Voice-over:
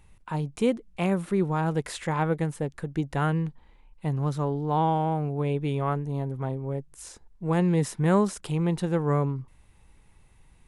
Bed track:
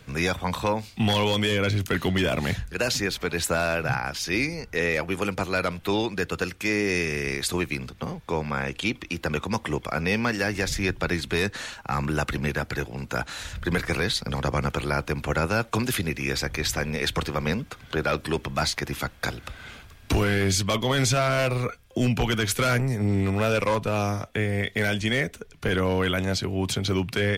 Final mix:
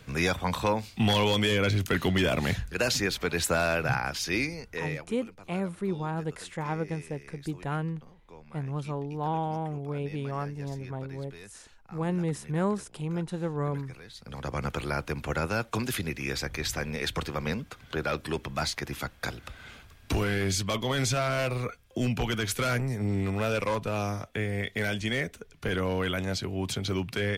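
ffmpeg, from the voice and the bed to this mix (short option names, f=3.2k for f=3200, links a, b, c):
-filter_complex "[0:a]adelay=4500,volume=-6dB[a];[1:a]volume=16.5dB,afade=t=out:st=4.17:d=0.98:silence=0.0841395,afade=t=in:st=14.12:d=0.58:silence=0.125893[b];[a][b]amix=inputs=2:normalize=0"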